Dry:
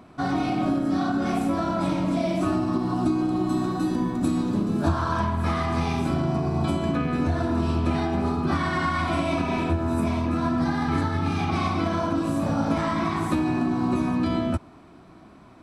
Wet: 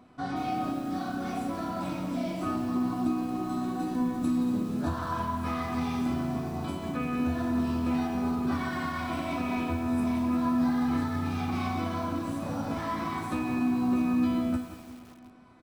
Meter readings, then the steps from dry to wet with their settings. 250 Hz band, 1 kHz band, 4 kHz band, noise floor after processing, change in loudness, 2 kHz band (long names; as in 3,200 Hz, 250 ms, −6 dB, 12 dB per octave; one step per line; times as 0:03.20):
−4.0 dB, −5.5 dB, −7.0 dB, −48 dBFS, −5.0 dB, −6.5 dB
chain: tuned comb filter 250 Hz, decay 0.43 s, harmonics all, mix 80%
repeating echo 240 ms, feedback 58%, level −17 dB
feedback echo at a low word length 174 ms, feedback 55%, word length 8 bits, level −10.5 dB
level +3.5 dB